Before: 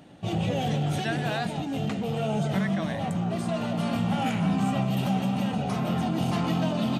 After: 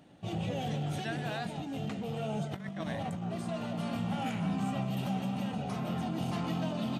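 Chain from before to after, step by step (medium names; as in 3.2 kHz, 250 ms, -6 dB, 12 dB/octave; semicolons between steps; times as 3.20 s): 2.44–3.24 s: compressor with a negative ratio -29 dBFS, ratio -0.5; trim -7.5 dB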